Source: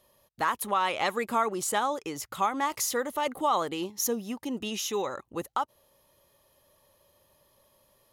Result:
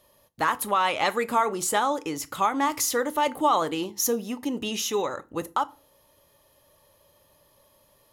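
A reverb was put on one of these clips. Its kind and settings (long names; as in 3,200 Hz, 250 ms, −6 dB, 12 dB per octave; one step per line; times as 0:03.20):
feedback delay network reverb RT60 0.31 s, low-frequency decay 1.35×, high-frequency decay 0.8×, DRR 11.5 dB
level +3.5 dB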